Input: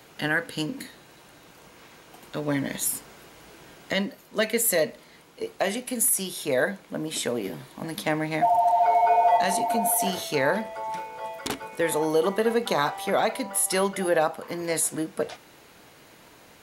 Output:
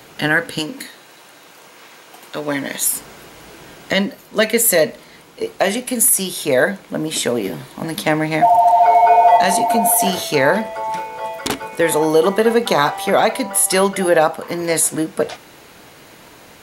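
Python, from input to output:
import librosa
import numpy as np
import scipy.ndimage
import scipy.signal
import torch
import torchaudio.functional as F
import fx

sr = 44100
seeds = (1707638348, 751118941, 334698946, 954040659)

y = fx.highpass(x, sr, hz=470.0, slope=6, at=(0.59, 2.97))
y = y * librosa.db_to_amplitude(9.0)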